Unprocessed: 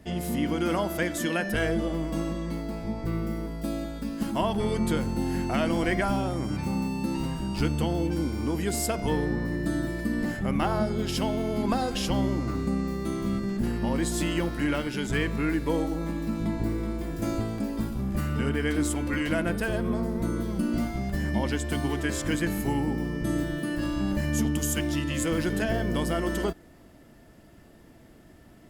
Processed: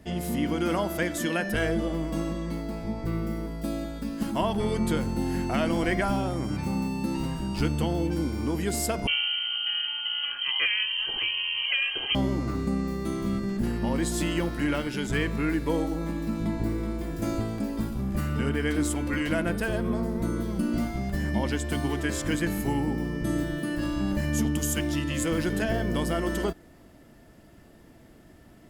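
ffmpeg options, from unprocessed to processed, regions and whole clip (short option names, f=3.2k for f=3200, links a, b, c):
-filter_complex "[0:a]asettb=1/sr,asplit=3[a][b][c];[a]atrim=end=9.074[d];[b]atrim=start=9.07:end=12.15,asetpts=PTS-STARTPTS,afade=t=in:d=0.004:c=qsin,afade=t=out:st=3.076:d=0.004:c=qsin,equalizer=f=370:t=o:w=0.94:g=-4,aecho=1:1:2.5:0.47,atrim=end_sample=135828,lowpass=f=2.7k:t=q:w=0.5098,lowpass=f=2.7k:t=q:w=0.6013,lowpass=f=2.7k:t=q:w=0.9,lowpass=f=2.7k:t=q:w=2.563,afreqshift=-3200[e];[c]atrim=start=12.146[f];[d][e]acrossfade=d=0.004:c1=hsin:c2=qsin[g];[g][f]acrossfade=d=0.004:c1=qsin:c2=hsin"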